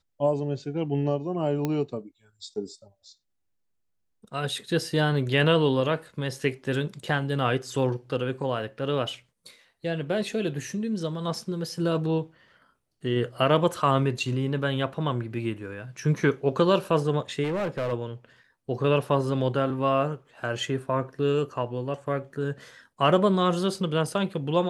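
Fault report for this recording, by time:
0:01.65: click −14 dBFS
0:17.43–0:17.93: clipping −24.5 dBFS

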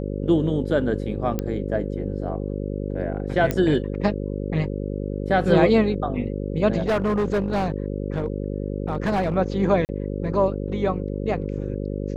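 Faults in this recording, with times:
mains buzz 50 Hz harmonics 11 −28 dBFS
0:01.39: click −12 dBFS
0:03.51: click −10 dBFS
0:06.78–0:09.36: clipping −18 dBFS
0:09.85–0:09.89: drop-out 39 ms

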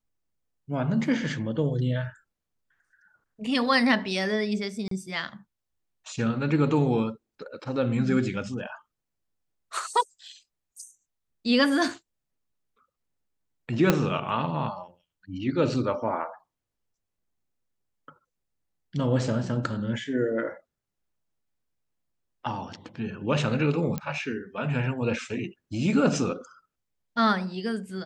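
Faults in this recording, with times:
0:04.88–0:04.91: drop-out 33 ms
0:13.90: click −5 dBFS
0:23.98: click −16 dBFS

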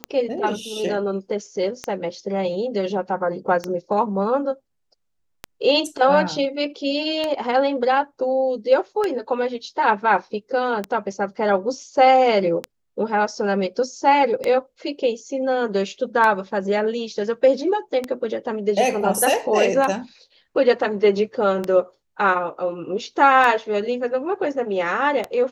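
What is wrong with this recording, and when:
scratch tick 33 1/3 rpm −10 dBFS

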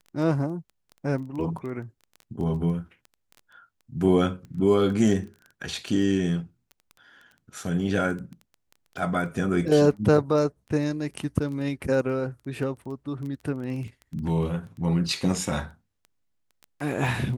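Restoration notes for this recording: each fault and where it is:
surface crackle 10 per second −33 dBFS

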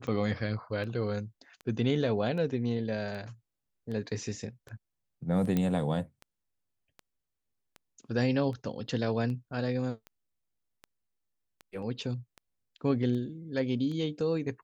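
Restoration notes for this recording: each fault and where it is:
scratch tick 78 rpm −30 dBFS
0:05.57: click −16 dBFS

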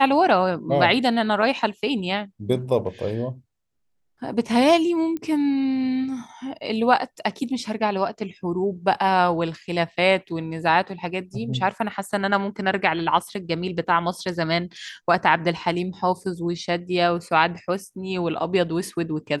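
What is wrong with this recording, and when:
0:05.17: click −19 dBFS

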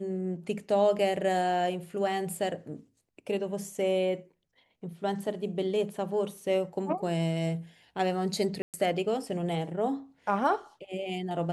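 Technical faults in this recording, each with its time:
0:08.62–0:08.74: drop-out 118 ms

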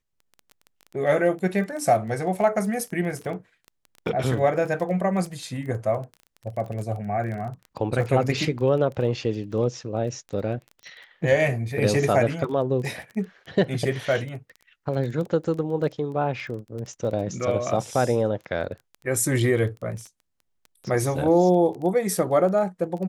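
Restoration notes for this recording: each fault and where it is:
surface crackle 14 per second −32 dBFS

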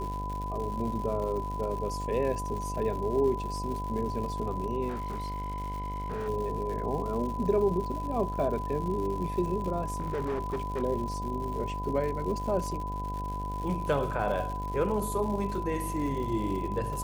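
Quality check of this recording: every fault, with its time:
mains buzz 50 Hz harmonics 17 −36 dBFS
surface crackle 180 per second −37 dBFS
whistle 1,000 Hz −35 dBFS
0:04.88–0:06.29: clipping −30.5 dBFS
0:09.85–0:10.83: clipping −27.5 dBFS

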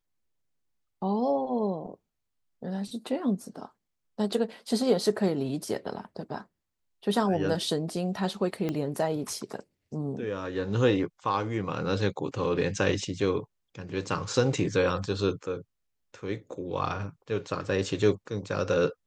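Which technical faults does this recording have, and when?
0:08.69: click −18 dBFS

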